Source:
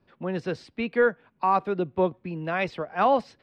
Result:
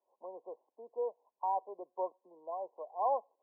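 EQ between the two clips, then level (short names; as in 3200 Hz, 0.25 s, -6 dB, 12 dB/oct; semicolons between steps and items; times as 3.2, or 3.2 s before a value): HPF 540 Hz 24 dB/oct; brick-wall FIR low-pass 1100 Hz; -8.5 dB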